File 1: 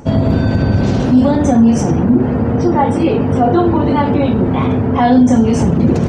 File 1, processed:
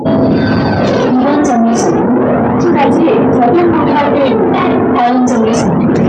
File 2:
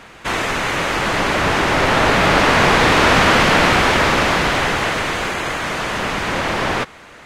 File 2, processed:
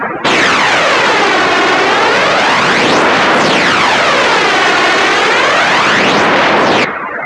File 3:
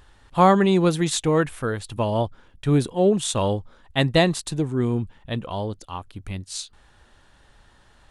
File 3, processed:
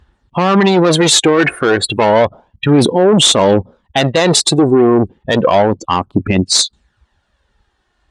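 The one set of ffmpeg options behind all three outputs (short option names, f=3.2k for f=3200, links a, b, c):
-af "afftdn=nr=36:nf=-37,areverse,acompressor=threshold=-23dB:ratio=16,areverse,asoftclip=type=tanh:threshold=-27dB,aphaser=in_gain=1:out_gain=1:delay=2.8:decay=0.42:speed=0.31:type=sinusoidal,highpass=240,lowpass=7.5k,alimiter=level_in=29.5dB:limit=-1dB:release=50:level=0:latency=1,volume=-1dB" -ar 48000 -c:a libvorbis -b:a 192k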